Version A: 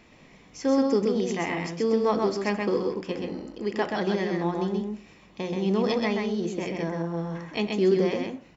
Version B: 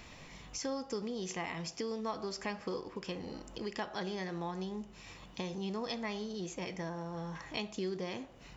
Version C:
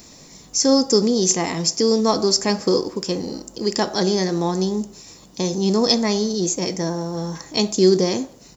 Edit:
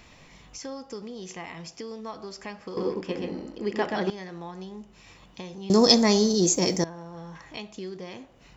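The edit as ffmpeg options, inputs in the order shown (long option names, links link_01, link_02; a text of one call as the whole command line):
ffmpeg -i take0.wav -i take1.wav -i take2.wav -filter_complex "[1:a]asplit=3[link_01][link_02][link_03];[link_01]atrim=end=2.772[link_04];[0:a]atrim=start=2.768:end=4.102[link_05];[link_02]atrim=start=4.098:end=5.702[link_06];[2:a]atrim=start=5.698:end=6.842[link_07];[link_03]atrim=start=6.838[link_08];[link_04][link_05]acrossfade=duration=0.004:curve1=hsin:curve2=hsin[link_09];[link_09][link_06]acrossfade=duration=0.004:curve1=hsin:curve2=hsin[link_10];[link_10][link_07]acrossfade=duration=0.004:curve1=hsin:curve2=hsin[link_11];[link_11][link_08]acrossfade=duration=0.004:curve1=hsin:curve2=hsin" out.wav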